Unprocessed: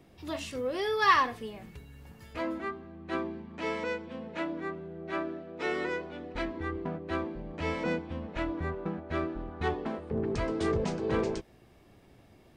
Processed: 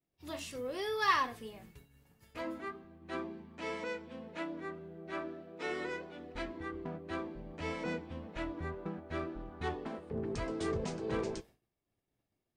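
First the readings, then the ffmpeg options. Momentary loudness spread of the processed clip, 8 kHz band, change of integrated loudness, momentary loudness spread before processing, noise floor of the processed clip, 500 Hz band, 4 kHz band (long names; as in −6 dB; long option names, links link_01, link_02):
10 LU, can't be measured, −6.0 dB, 10 LU, below −85 dBFS, −6.5 dB, −4.5 dB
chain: -af "highshelf=frequency=6400:gain=9,flanger=delay=5.9:depth=2.3:regen=-75:speed=1.8:shape=triangular,agate=range=-33dB:threshold=-48dB:ratio=3:detection=peak,volume=-2dB"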